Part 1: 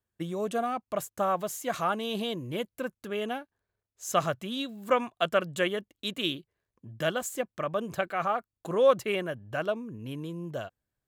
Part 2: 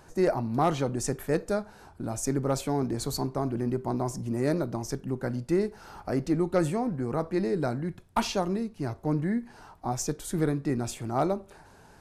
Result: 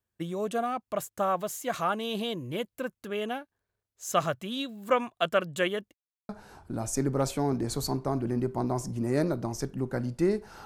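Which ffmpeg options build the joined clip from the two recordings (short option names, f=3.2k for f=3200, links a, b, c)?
-filter_complex "[0:a]apad=whole_dur=10.65,atrim=end=10.65,asplit=2[a][b];[a]atrim=end=5.94,asetpts=PTS-STARTPTS,afade=t=out:st=5.936:d=0.004:c=hsin[c];[b]atrim=start=5.94:end=6.29,asetpts=PTS-STARTPTS,volume=0[d];[1:a]atrim=start=1.59:end=5.95,asetpts=PTS-STARTPTS,afade=t=in:d=0.004:c=hsin[e];[c][d][e]concat=n=3:v=0:a=1"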